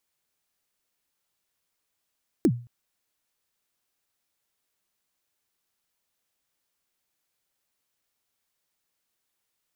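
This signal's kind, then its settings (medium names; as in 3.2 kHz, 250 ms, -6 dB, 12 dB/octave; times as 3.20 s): kick drum length 0.22 s, from 380 Hz, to 120 Hz, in 62 ms, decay 0.37 s, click on, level -13 dB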